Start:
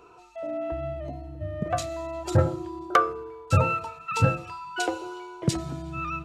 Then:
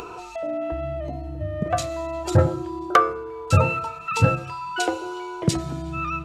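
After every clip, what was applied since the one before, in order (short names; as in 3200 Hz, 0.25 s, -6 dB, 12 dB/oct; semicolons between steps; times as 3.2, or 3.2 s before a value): de-hum 133.3 Hz, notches 19; upward compressor, threshold -30 dBFS; gain +4 dB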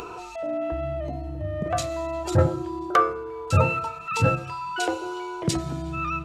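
transient shaper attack -5 dB, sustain -1 dB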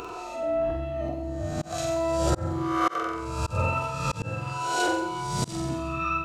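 spectral swells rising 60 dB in 0.86 s; flutter echo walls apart 7.8 m, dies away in 0.6 s; auto swell 0.295 s; gain -3.5 dB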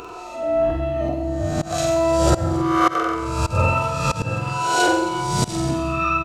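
echo 0.267 s -18 dB; AGC gain up to 6.5 dB; on a send at -17 dB: reverb RT60 0.50 s, pre-delay 65 ms; on the sum: gain +1 dB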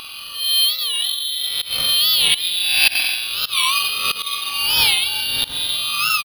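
inverted band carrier 3800 Hz; careless resampling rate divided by 6×, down filtered, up hold; record warp 45 rpm, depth 160 cents; gain +2.5 dB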